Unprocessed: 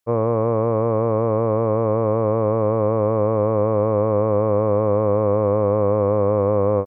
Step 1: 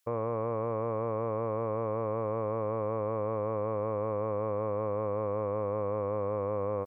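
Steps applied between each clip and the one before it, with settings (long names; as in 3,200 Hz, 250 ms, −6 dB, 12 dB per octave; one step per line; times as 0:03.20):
tilt shelving filter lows −5 dB
brickwall limiter −22 dBFS, peak gain reduction 11.5 dB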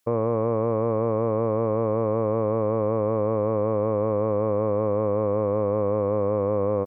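parametric band 230 Hz +9 dB 3 octaves
level +2.5 dB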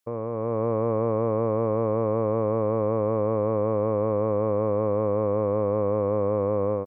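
automatic gain control gain up to 7 dB
level −7.5 dB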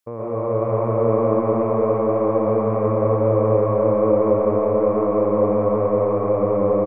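single-tap delay 276 ms −7 dB
convolution reverb RT60 0.90 s, pre-delay 85 ms, DRR −4.5 dB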